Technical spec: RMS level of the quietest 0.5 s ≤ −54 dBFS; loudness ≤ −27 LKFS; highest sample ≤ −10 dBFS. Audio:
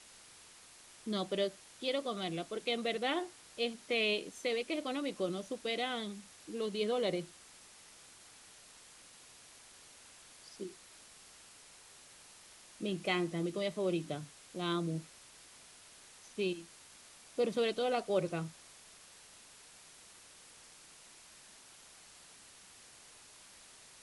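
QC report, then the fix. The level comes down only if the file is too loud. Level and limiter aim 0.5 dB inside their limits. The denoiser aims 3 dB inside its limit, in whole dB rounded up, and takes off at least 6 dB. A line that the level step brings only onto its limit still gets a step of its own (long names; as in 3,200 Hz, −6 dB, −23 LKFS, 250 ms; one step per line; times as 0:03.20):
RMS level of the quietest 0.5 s −58 dBFS: in spec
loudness −36.5 LKFS: in spec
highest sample −19.0 dBFS: in spec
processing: no processing needed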